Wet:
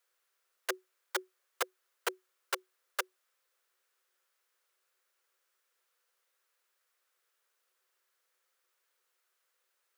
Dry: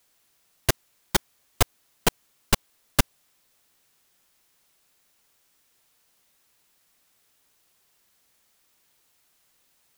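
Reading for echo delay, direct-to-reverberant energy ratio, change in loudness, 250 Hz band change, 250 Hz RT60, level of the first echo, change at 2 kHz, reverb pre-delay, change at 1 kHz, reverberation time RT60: none, none, -12.0 dB, -19.5 dB, none, none, -7.5 dB, none, -9.5 dB, none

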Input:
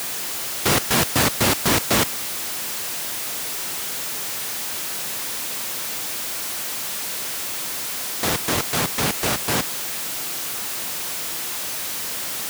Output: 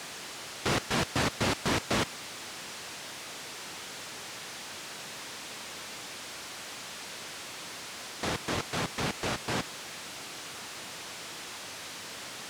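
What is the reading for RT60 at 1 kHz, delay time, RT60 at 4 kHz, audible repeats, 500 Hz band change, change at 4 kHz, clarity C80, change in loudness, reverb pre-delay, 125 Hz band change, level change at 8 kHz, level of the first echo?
none, none, none, none, -8.0 dB, -10.0 dB, none, -12.5 dB, none, -8.0 dB, -15.0 dB, none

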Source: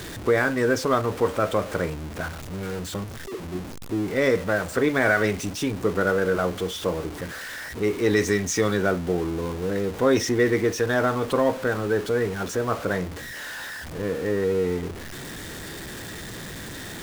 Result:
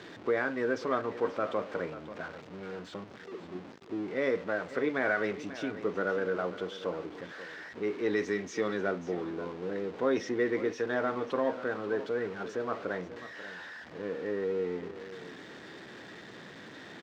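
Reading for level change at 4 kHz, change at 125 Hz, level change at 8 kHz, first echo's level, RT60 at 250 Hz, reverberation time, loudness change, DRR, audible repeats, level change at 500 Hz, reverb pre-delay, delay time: -12.5 dB, -16.5 dB, -20.5 dB, -14.0 dB, none, none, -8.5 dB, none, 1, -8.0 dB, none, 0.538 s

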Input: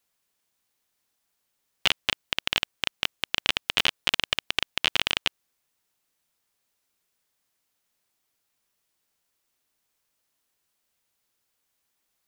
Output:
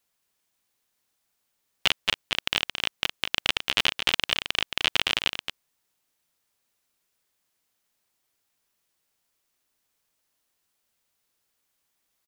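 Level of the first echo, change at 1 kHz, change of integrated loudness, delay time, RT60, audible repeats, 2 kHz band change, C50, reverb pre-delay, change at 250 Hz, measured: -8.0 dB, +0.5 dB, +0.5 dB, 0.222 s, none, 1, +0.5 dB, none, none, +0.5 dB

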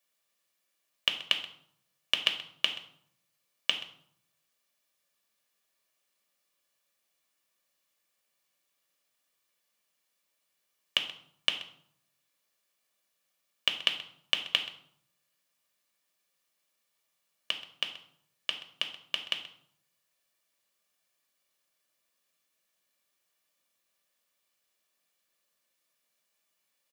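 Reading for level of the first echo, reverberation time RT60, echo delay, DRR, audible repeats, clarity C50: -16.5 dB, 0.65 s, 0.129 s, 3.5 dB, 1, 9.5 dB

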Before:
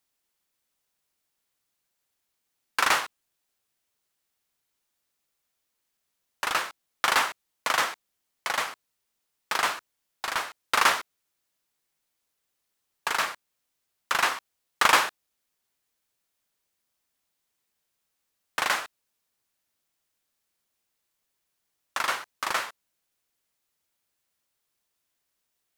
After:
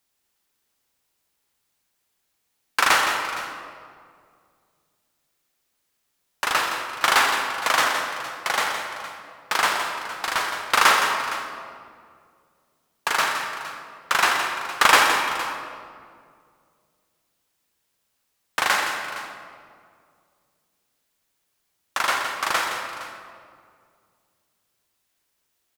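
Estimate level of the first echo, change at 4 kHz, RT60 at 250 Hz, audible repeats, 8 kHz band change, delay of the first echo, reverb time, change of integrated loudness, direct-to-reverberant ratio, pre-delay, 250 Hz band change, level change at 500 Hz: -9.0 dB, +6.0 dB, 2.6 s, 3, +5.5 dB, 0.166 s, 2.2 s, +4.5 dB, 2.0 dB, 34 ms, +7.0 dB, +6.5 dB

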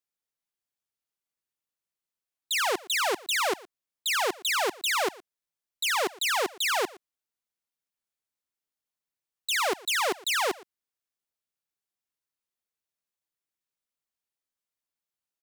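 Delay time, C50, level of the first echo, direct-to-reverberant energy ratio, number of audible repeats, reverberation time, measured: 0.116 s, none, -21.5 dB, none, 1, none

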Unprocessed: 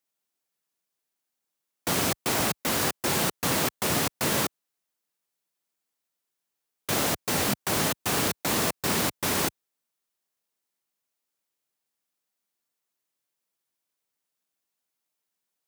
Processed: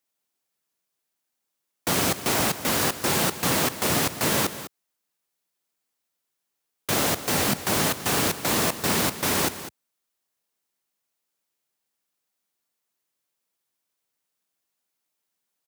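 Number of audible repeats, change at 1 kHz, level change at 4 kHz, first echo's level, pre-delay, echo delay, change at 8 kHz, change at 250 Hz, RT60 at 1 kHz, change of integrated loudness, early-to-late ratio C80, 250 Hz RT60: 1, +2.5 dB, +2.5 dB, -13.5 dB, none, 0.203 s, +2.5 dB, +2.5 dB, none, +2.5 dB, none, none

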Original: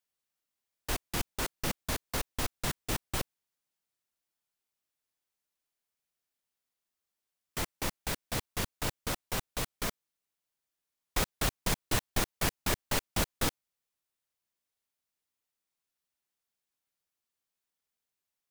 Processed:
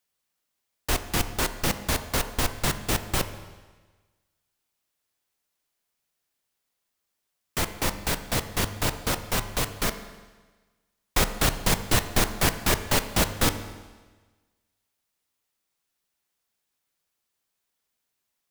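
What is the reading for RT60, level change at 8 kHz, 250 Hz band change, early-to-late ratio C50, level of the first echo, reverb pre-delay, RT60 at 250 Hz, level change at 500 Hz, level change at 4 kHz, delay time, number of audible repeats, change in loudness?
1.3 s, +7.5 dB, +8.0 dB, 11.0 dB, none, 14 ms, 1.3 s, +8.0 dB, +8.0 dB, none, none, +8.0 dB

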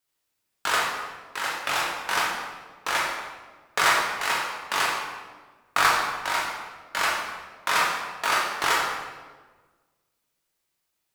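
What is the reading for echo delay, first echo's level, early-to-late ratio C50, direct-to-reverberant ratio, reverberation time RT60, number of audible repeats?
none, none, 1.5 dB, -4.0 dB, 1.4 s, none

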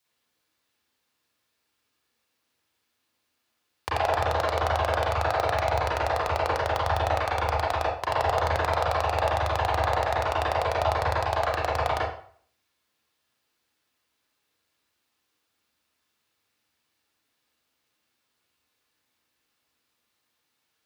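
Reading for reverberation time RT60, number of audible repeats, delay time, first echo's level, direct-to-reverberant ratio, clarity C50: 0.50 s, none, none, none, -7.5 dB, 0.5 dB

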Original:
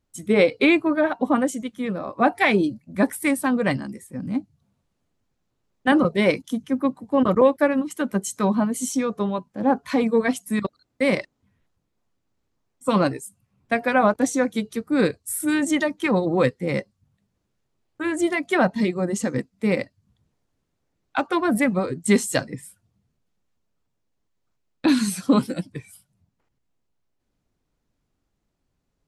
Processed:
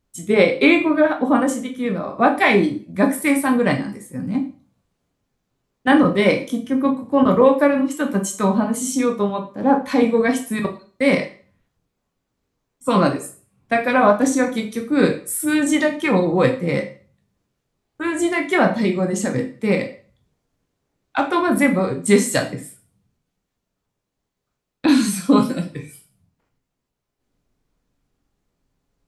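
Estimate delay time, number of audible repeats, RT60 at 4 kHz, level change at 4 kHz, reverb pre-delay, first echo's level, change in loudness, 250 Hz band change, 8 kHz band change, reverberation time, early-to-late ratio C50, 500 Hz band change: none, none, 0.40 s, +3.5 dB, 6 ms, none, +3.5 dB, +3.5 dB, +3.5 dB, 0.40 s, 10.5 dB, +4.0 dB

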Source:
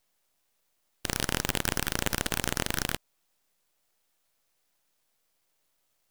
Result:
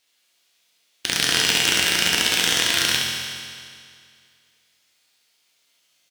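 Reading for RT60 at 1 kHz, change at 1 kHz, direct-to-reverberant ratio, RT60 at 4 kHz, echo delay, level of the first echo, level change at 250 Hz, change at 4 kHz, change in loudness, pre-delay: 2.2 s, +6.0 dB, -3.5 dB, 2.1 s, 68 ms, -4.0 dB, +3.0 dB, +16.5 dB, +11.5 dB, 4 ms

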